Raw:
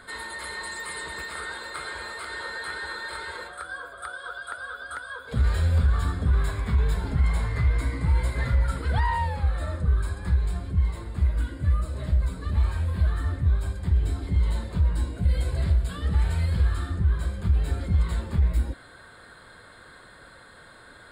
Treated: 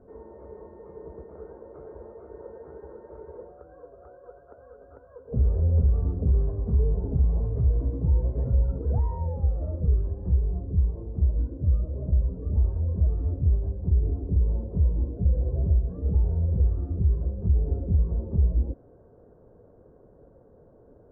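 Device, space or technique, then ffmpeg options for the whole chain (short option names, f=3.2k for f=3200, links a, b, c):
under water: -af "lowpass=f=620:w=0.5412,lowpass=f=620:w=1.3066,equalizer=f=430:t=o:w=0.34:g=5.5"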